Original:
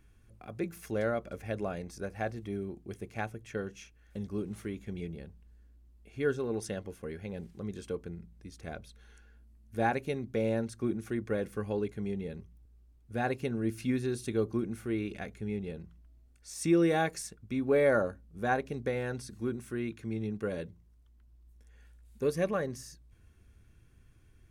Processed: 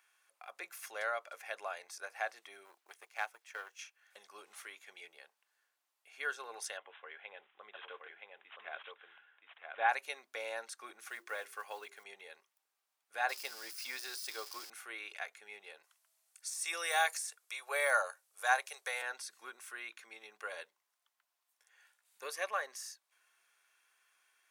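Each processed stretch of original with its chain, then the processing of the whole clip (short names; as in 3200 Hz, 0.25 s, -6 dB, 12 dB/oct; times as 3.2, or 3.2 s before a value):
2.65–3.79 G.711 law mismatch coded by A + brick-wall FIR high-pass 180 Hz
6.77–9.89 echo 0.972 s -3.5 dB + careless resampling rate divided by 6×, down none, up filtered
10.99–12.05 block floating point 7-bit + notches 50/100/150/200/250/300/350/400 Hz
13.29–14.7 switching spikes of -36 dBFS + bell 5000 Hz +14.5 dB 0.32 oct
15.83–19.02 inverse Chebyshev high-pass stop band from 210 Hz + bell 10000 Hz +13.5 dB 1.8 oct
whole clip: de-esser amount 80%; HPF 800 Hz 24 dB/oct; gain +2.5 dB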